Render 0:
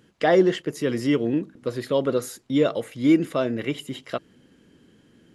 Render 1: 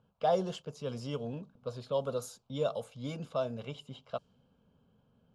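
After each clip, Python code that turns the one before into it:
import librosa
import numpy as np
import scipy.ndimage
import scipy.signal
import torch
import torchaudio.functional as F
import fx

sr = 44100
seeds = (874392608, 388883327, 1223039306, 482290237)

y = fx.fixed_phaser(x, sr, hz=790.0, stages=4)
y = fx.env_lowpass(y, sr, base_hz=2100.0, full_db=-23.5)
y = y * librosa.db_to_amplitude(-6.0)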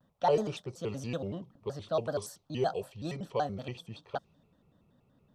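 y = fx.vibrato_shape(x, sr, shape='square', rate_hz=5.3, depth_cents=250.0)
y = y * librosa.db_to_amplitude(1.5)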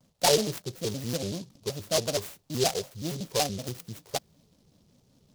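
y = fx.noise_mod_delay(x, sr, seeds[0], noise_hz=4600.0, depth_ms=0.17)
y = y * librosa.db_to_amplitude(4.0)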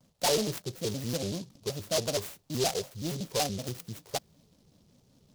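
y = 10.0 ** (-21.5 / 20.0) * np.tanh(x / 10.0 ** (-21.5 / 20.0))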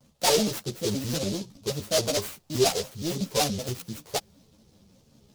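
y = fx.ensemble(x, sr)
y = y * librosa.db_to_amplitude(8.0)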